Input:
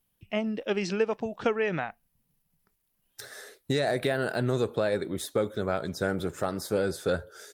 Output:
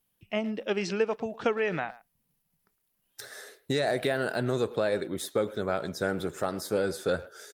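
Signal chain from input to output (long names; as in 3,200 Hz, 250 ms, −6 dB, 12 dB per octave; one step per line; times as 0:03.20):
low-shelf EQ 110 Hz −8 dB
far-end echo of a speakerphone 110 ms, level −17 dB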